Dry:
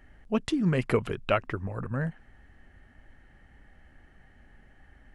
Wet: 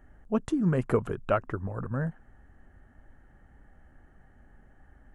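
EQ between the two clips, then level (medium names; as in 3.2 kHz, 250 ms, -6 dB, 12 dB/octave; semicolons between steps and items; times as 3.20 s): high-order bell 3.2 kHz -11 dB; treble shelf 7.1 kHz -5.5 dB; 0.0 dB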